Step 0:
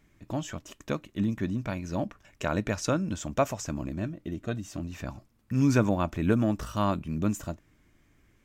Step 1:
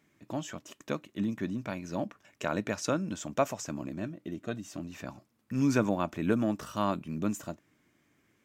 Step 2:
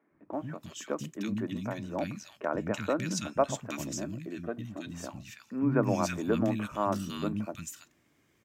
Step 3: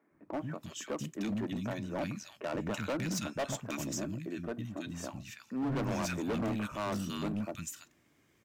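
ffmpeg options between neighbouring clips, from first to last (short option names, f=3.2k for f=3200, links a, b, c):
-af "highpass=160,volume=-2dB"
-filter_complex "[0:a]acrossover=split=230|1700[a][b][c];[a]adelay=110[d];[c]adelay=330[e];[d][b][e]amix=inputs=3:normalize=0,volume=2dB"
-af "volume=30.5dB,asoftclip=hard,volume=-30.5dB"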